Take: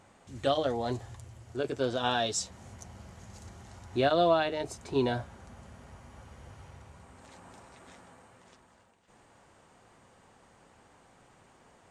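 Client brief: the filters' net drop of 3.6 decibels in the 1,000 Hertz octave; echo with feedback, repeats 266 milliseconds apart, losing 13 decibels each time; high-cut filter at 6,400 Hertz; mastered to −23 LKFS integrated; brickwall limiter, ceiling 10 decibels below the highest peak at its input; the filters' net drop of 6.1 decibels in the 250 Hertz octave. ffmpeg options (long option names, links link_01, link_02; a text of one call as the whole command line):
ffmpeg -i in.wav -af "lowpass=6400,equalizer=frequency=250:width_type=o:gain=-8,equalizer=frequency=1000:width_type=o:gain=-5,alimiter=level_in=2dB:limit=-24dB:level=0:latency=1,volume=-2dB,aecho=1:1:266|532|798:0.224|0.0493|0.0108,volume=15dB" out.wav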